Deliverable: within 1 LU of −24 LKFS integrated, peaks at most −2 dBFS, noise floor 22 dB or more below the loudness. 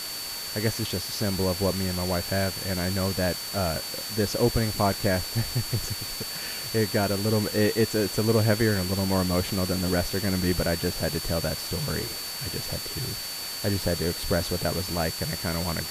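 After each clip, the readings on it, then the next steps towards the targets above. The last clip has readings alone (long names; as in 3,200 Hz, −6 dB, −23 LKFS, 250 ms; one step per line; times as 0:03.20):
interfering tone 4,500 Hz; level of the tone −35 dBFS; background noise floor −34 dBFS; target noise floor −49 dBFS; integrated loudness −26.5 LKFS; sample peak −9.5 dBFS; target loudness −24.0 LKFS
→ notch filter 4,500 Hz, Q 30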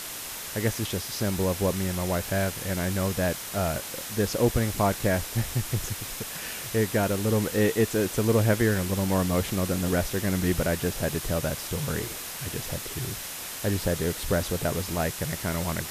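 interfering tone none found; background noise floor −37 dBFS; target noise floor −50 dBFS
→ broadband denoise 13 dB, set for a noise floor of −37 dBFS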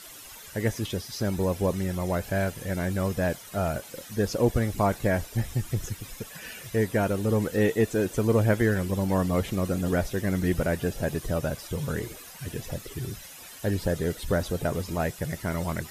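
background noise floor −45 dBFS; target noise floor −50 dBFS
→ broadband denoise 6 dB, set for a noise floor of −45 dBFS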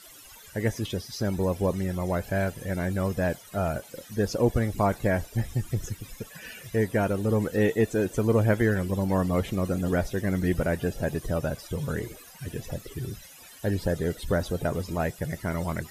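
background noise floor −49 dBFS; target noise floor −50 dBFS
→ broadband denoise 6 dB, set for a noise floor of −49 dBFS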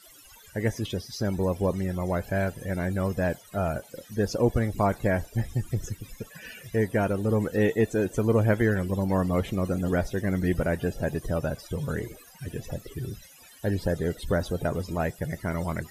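background noise floor −52 dBFS; integrated loudness −28.0 LKFS; sample peak −9.5 dBFS; target loudness −24.0 LKFS
→ level +4 dB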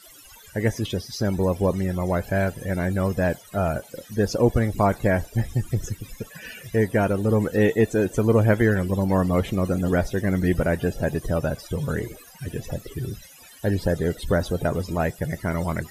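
integrated loudness −24.0 LKFS; sample peak −5.5 dBFS; background noise floor −48 dBFS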